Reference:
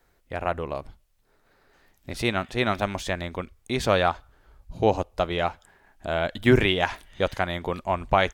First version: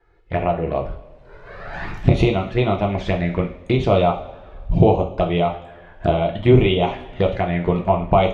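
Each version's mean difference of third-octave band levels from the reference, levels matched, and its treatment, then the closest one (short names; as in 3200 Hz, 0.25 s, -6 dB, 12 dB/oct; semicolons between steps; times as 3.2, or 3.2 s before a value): 7.0 dB: recorder AGC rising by 22 dB/s; LPF 2300 Hz 12 dB/oct; envelope flanger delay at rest 2.4 ms, full sweep at -21 dBFS; two-slope reverb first 0.41 s, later 1.7 s, from -17 dB, DRR 1.5 dB; gain +4.5 dB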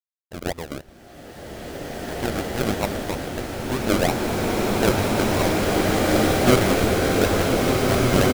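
12.5 dB: decimation with a swept rate 39×, swing 60% 3.1 Hz; crossover distortion -41 dBFS; on a send: echo 0.194 s -24 dB; on the sum: bloom reverb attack 2.36 s, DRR -7 dB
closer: first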